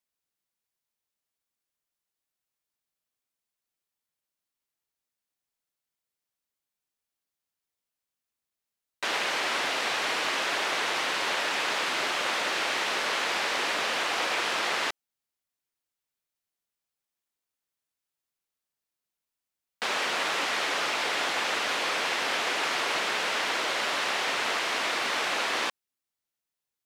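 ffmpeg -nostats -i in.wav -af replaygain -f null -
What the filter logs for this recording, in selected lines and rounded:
track_gain = +10.7 dB
track_peak = 0.129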